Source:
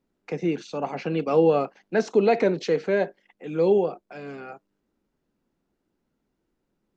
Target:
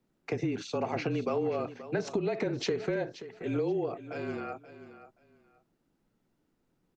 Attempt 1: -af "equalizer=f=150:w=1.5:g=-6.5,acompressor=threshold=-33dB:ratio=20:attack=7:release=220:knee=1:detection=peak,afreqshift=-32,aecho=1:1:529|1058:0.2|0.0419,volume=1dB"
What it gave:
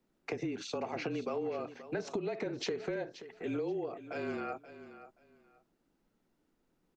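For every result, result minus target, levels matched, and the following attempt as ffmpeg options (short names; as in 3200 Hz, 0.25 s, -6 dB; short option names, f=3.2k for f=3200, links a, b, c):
compressor: peak gain reduction +5 dB; 125 Hz band -4.0 dB
-af "equalizer=f=150:w=1.5:g=-6.5,acompressor=threshold=-27dB:ratio=20:attack=7:release=220:knee=1:detection=peak,afreqshift=-32,aecho=1:1:529|1058:0.2|0.0419,volume=1dB"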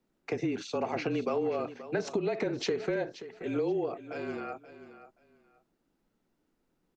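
125 Hz band -4.0 dB
-af "acompressor=threshold=-27dB:ratio=20:attack=7:release=220:knee=1:detection=peak,afreqshift=-32,aecho=1:1:529|1058:0.2|0.0419,volume=1dB"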